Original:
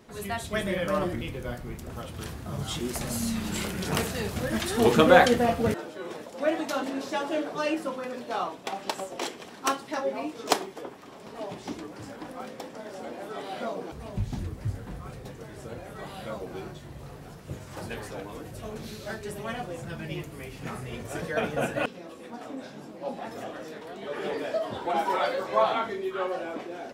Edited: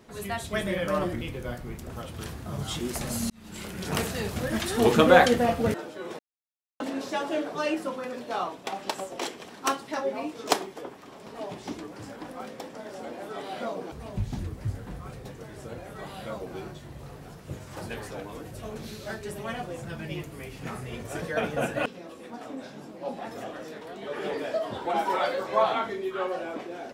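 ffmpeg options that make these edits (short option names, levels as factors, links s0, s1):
-filter_complex "[0:a]asplit=4[s0][s1][s2][s3];[s0]atrim=end=3.3,asetpts=PTS-STARTPTS,afade=t=out:st=3.296:d=0.004:c=hsin[s4];[s1]atrim=start=3.3:end=6.19,asetpts=PTS-STARTPTS,afade=t=in:d=0.74,afade=t=out:st=2.886:d=0.004:c=hsin[s5];[s2]atrim=start=6.19:end=6.8,asetpts=PTS-STARTPTS,volume=0[s6];[s3]atrim=start=6.8,asetpts=PTS-STARTPTS,afade=t=in:d=0.004:c=hsin[s7];[s4][s5][s6][s7]concat=n=4:v=0:a=1"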